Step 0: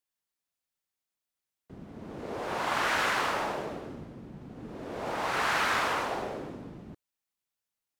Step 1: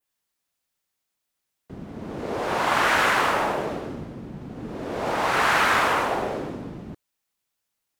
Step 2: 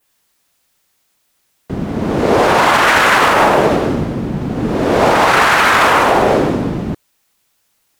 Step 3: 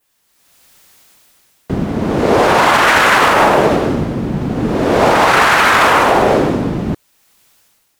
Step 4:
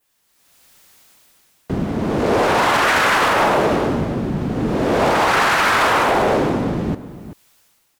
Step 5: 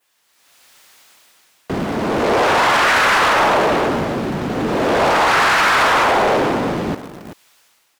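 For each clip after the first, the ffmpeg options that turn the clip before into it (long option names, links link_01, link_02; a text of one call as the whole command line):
ffmpeg -i in.wav -af "adynamicequalizer=threshold=0.00398:dfrequency=4900:dqfactor=1:tfrequency=4900:tqfactor=1:attack=5:release=100:ratio=0.375:range=2.5:mode=cutabove:tftype=bell,volume=8dB" out.wav
ffmpeg -i in.wav -af "alimiter=level_in=18.5dB:limit=-1dB:release=50:level=0:latency=1,volume=-1dB" out.wav
ffmpeg -i in.wav -af "dynaudnorm=framelen=110:gausssize=9:maxgain=16dB,volume=-1dB" out.wav
ffmpeg -i in.wav -filter_complex "[0:a]asoftclip=type=tanh:threshold=-7dB,asplit=2[link_01][link_02];[link_02]adelay=384.8,volume=-13dB,highshelf=frequency=4000:gain=-8.66[link_03];[link_01][link_03]amix=inputs=2:normalize=0,volume=-3dB" out.wav
ffmpeg -i in.wav -filter_complex "[0:a]asplit=2[link_01][link_02];[link_02]acrusher=bits=4:mix=0:aa=0.000001,volume=-11dB[link_03];[link_01][link_03]amix=inputs=2:normalize=0,asplit=2[link_04][link_05];[link_05]highpass=frequency=720:poles=1,volume=14dB,asoftclip=type=tanh:threshold=-6.5dB[link_06];[link_04][link_06]amix=inputs=2:normalize=0,lowpass=frequency=5000:poles=1,volume=-6dB,volume=-2.5dB" out.wav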